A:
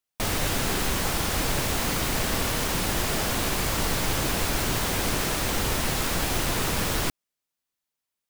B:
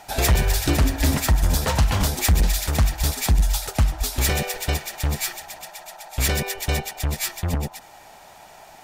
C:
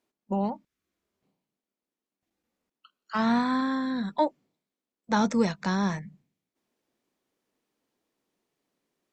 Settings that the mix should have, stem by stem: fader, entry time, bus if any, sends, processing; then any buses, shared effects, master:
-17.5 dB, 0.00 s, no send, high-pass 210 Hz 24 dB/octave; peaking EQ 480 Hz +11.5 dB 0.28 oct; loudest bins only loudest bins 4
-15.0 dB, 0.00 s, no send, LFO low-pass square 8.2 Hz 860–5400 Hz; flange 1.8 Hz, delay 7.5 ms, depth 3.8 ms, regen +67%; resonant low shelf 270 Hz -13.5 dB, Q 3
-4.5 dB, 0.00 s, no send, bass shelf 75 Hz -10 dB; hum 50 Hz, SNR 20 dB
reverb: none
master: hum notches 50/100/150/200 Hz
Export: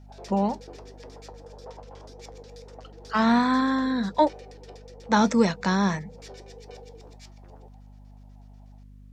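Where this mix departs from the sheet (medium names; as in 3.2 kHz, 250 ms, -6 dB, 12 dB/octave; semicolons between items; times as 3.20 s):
stem B -15.0 dB -> -21.5 dB; stem C -4.5 dB -> +4.5 dB; master: missing hum notches 50/100/150/200 Hz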